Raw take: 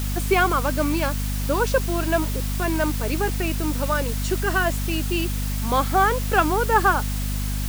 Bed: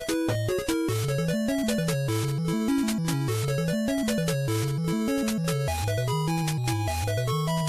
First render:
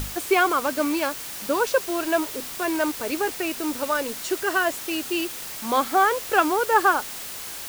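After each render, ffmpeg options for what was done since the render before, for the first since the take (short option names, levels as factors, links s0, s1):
-af "bandreject=f=50:t=h:w=6,bandreject=f=100:t=h:w=6,bandreject=f=150:t=h:w=6,bandreject=f=200:t=h:w=6,bandreject=f=250:t=h:w=6"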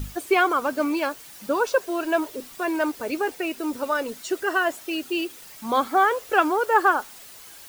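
-af "afftdn=nr=11:nf=-35"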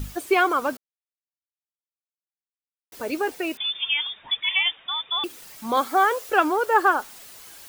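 -filter_complex "[0:a]asettb=1/sr,asplit=3[s0][s1][s2];[s0]atrim=end=3.574[s3];[s1]atrim=start=3.57:end=5.24,asetpts=PTS-STARTPTS,afade=t=in:d=0.004:c=qsin,afade=t=out:st=1.666:d=0.004:c=qsin,lowpass=f=3200:t=q:w=0.5098,lowpass=f=3200:t=q:w=0.6013,lowpass=f=3200:t=q:w=0.9,lowpass=f=3200:t=q:w=2.563,afreqshift=-3800[s4];[s2]atrim=start=5.236[s5];[s3][s4]acrossfade=d=0.004:c1=hsin:c2=qsin[s6];[s6][s5]acrossfade=d=0.004:c1=qsin:c2=hsin,asettb=1/sr,asplit=3[s7][s8][s9];[s7]atrim=end=5.774[s10];[s8]atrim=start=5.77:end=6.3,asetpts=PTS-STARTPTS,afade=t=in:d=0.004:c=qsin,afade=t=out:st=0.526:d=0.004:c=qsin,bass=f=250:g=-7,treble=f=4000:g=4[s11];[s9]atrim=start=6.296[s12];[s10][s11]acrossfade=d=0.004:c1=hsin:c2=qsin[s13];[s13][s12]acrossfade=d=0.004:c1=qsin:c2=hsin,asplit=3[s14][s15][s16];[s14]atrim=end=0.77,asetpts=PTS-STARTPTS,afade=t=out:st=0.766:d=0.004:c=hsin[s17];[s15]atrim=start=0.77:end=2.92,asetpts=PTS-STARTPTS,volume=0[s18];[s16]atrim=start=2.92,asetpts=PTS-STARTPTS,afade=t=in:d=0.004:c=hsin[s19];[s17][s18][s19]concat=n=3:v=0:a=1"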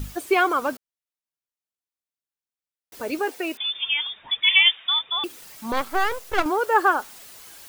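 -filter_complex "[0:a]asettb=1/sr,asplit=3[s0][s1][s2];[s0]atrim=end=3.194[s3];[s1]atrim=start=3.19:end=3.77,asetpts=PTS-STARTPTS,afade=t=in:d=0.004:c=qsin,afade=t=out:st=0.576:d=0.004:c=qsin,highpass=220[s4];[s2]atrim=start=3.766[s5];[s3][s4]acrossfade=d=0.004:c1=hsin:c2=qsin[s6];[s6][s5]acrossfade=d=0.004:c1=qsin:c2=hsin,asettb=1/sr,asplit=3[s7][s8][s9];[s7]atrim=end=4.434[s10];[s8]atrim=start=4.43:end=4.99,asetpts=PTS-STARTPTS,afade=t=in:d=0.004:c=qsin,afade=t=out:st=0.556:d=0.004:c=qsin,tiltshelf=f=970:g=-8.5[s11];[s9]atrim=start=4.986[s12];[s10][s11]acrossfade=d=0.004:c1=hsin:c2=qsin[s13];[s13][s12]acrossfade=d=0.004:c1=qsin:c2=hsin,asettb=1/sr,asplit=3[s14][s15][s16];[s14]atrim=end=5.724[s17];[s15]atrim=start=5.72:end=6.46,asetpts=PTS-STARTPTS,afade=t=in:d=0.004:c=qsin,afade=t=out:st=0.736:d=0.004:c=qsin,aeval=exprs='max(val(0),0)':c=same[s18];[s16]atrim=start=6.456[s19];[s17][s18]acrossfade=d=0.004:c1=hsin:c2=qsin[s20];[s20][s19]acrossfade=d=0.004:c1=qsin:c2=hsin"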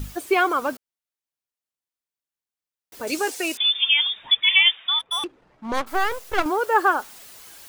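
-filter_complex "[0:a]asettb=1/sr,asplit=3[s0][s1][s2];[s0]atrim=end=3.074[s3];[s1]atrim=start=3.07:end=4.35,asetpts=PTS-STARTPTS,afade=t=in:d=0.004:c=qsin,afade=t=out:st=1.276:d=0.004:c=qsin,equalizer=f=7200:w=0.57:g=14.5[s4];[s2]atrim=start=4.346[s5];[s3][s4]acrossfade=d=0.004:c1=hsin:c2=qsin[s6];[s6][s5]acrossfade=d=0.004:c1=qsin:c2=hsin,asplit=3[s7][s8][s9];[s7]afade=t=out:st=4.99:d=0.02[s10];[s8]adynamicsmooth=sensitivity=4.5:basefreq=800,afade=t=in:st=4.99:d=0.02,afade=t=out:st=5.86:d=0.02[s11];[s9]afade=t=in:st=5.86:d=0.02[s12];[s10][s11][s12]amix=inputs=3:normalize=0"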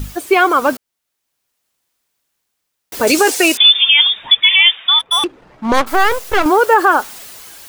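-af "dynaudnorm=f=150:g=9:m=5.01,alimiter=level_in=2.24:limit=0.891:release=50:level=0:latency=1"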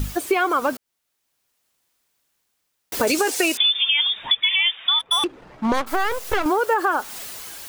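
-af "acompressor=threshold=0.126:ratio=4"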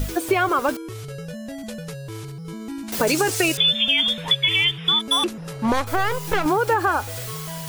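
-filter_complex "[1:a]volume=0.422[s0];[0:a][s0]amix=inputs=2:normalize=0"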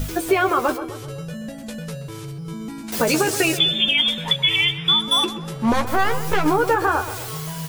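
-filter_complex "[0:a]asplit=2[s0][s1];[s1]adelay=13,volume=0.447[s2];[s0][s2]amix=inputs=2:normalize=0,asplit=2[s3][s4];[s4]adelay=128,lowpass=f=2000:p=1,volume=0.282,asplit=2[s5][s6];[s6]adelay=128,lowpass=f=2000:p=1,volume=0.53,asplit=2[s7][s8];[s8]adelay=128,lowpass=f=2000:p=1,volume=0.53,asplit=2[s9][s10];[s10]adelay=128,lowpass=f=2000:p=1,volume=0.53,asplit=2[s11][s12];[s12]adelay=128,lowpass=f=2000:p=1,volume=0.53,asplit=2[s13][s14];[s14]adelay=128,lowpass=f=2000:p=1,volume=0.53[s15];[s3][s5][s7][s9][s11][s13][s15]amix=inputs=7:normalize=0"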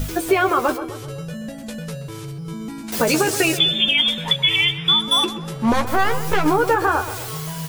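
-af "volume=1.12"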